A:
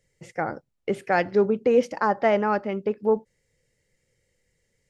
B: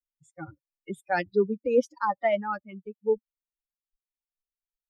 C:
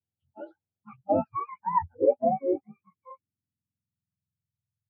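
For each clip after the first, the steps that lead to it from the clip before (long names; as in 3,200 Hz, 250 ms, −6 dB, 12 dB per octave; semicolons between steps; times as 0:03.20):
spectral dynamics exaggerated over time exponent 3
frequency axis turned over on the octave scale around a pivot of 680 Hz; low-pass filter sweep 730 Hz → 130 Hz, 0:01.76–0:04.69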